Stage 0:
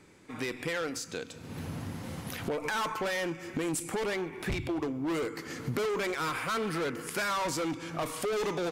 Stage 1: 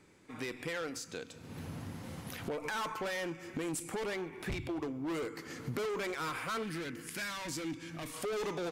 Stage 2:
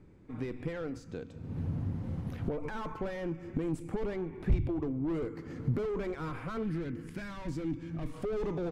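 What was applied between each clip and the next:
time-frequency box 6.64–8.15 s, 350–1500 Hz -8 dB; trim -5 dB
tilt EQ -4.5 dB/octave; trim -3.5 dB

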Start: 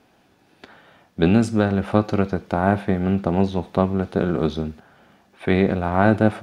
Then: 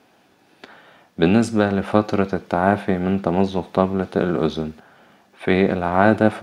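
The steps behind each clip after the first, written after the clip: high-pass 200 Hz 6 dB/octave; trim +3 dB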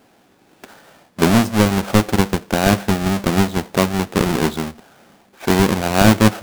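square wave that keeps the level; trim -2.5 dB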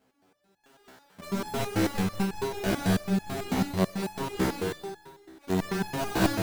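multi-head delay 62 ms, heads first and third, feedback 52%, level -11.5 dB; gated-style reverb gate 270 ms rising, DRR -4 dB; resonator arpeggio 9.1 Hz 65–850 Hz; trim -7.5 dB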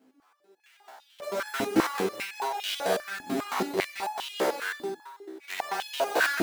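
step-sequenced high-pass 5 Hz 270–3100 Hz

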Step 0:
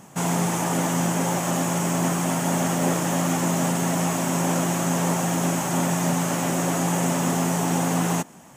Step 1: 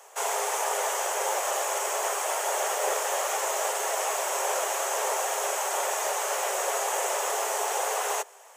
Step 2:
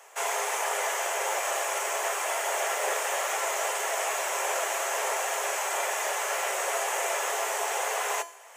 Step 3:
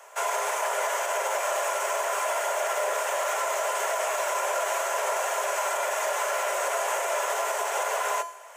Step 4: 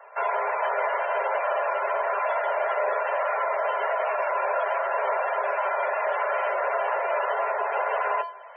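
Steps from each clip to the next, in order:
steep high-pass 400 Hz 96 dB/octave; trim -1 dB
peaking EQ 2.1 kHz +6.5 dB 1.1 oct; reverse; upward compressor, threshold -43 dBFS; reverse; feedback comb 340 Hz, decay 0.48 s, harmonics all, mix 70%; trim +7 dB
small resonant body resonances 610/1000/1400 Hz, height 10 dB, ringing for 35 ms; peak limiter -18 dBFS, peak gain reduction 5 dB; steep high-pass 340 Hz 72 dB/octave
loudest bins only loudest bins 64; resampled via 11.025 kHz; trim +2.5 dB

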